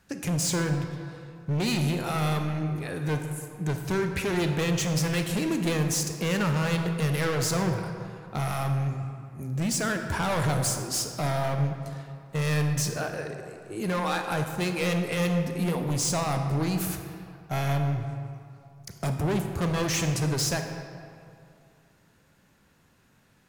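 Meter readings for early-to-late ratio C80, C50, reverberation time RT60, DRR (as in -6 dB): 7.0 dB, 6.0 dB, 2.5 s, 5.0 dB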